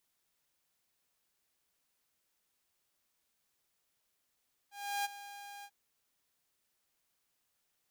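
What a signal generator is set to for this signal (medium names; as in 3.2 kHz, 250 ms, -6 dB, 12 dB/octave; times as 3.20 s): ADSR saw 809 Hz, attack 338 ms, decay 23 ms, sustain -15 dB, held 0.93 s, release 59 ms -29 dBFS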